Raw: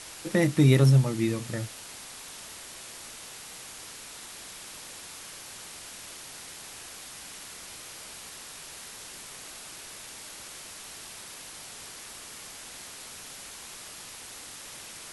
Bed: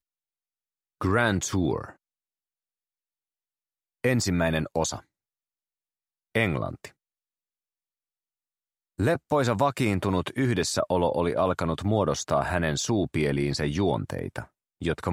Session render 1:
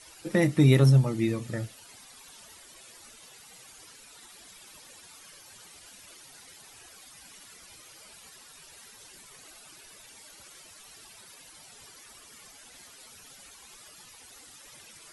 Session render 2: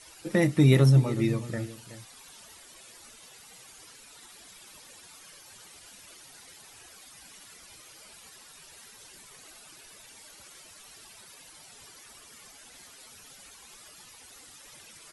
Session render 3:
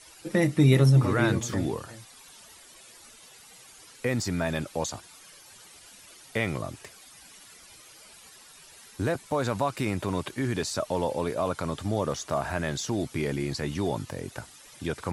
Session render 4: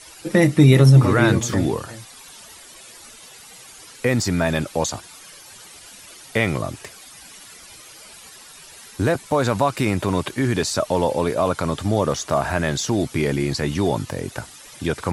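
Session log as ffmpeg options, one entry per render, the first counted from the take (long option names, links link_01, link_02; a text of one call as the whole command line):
ffmpeg -i in.wav -af "afftdn=noise_reduction=13:noise_floor=-44" out.wav
ffmpeg -i in.wav -filter_complex "[0:a]asplit=2[link_01][link_02];[link_02]adelay=373.2,volume=-14dB,highshelf=frequency=4000:gain=-8.4[link_03];[link_01][link_03]amix=inputs=2:normalize=0" out.wav
ffmpeg -i in.wav -i bed.wav -filter_complex "[1:a]volume=-4dB[link_01];[0:a][link_01]amix=inputs=2:normalize=0" out.wav
ffmpeg -i in.wav -af "volume=8dB,alimiter=limit=-3dB:level=0:latency=1" out.wav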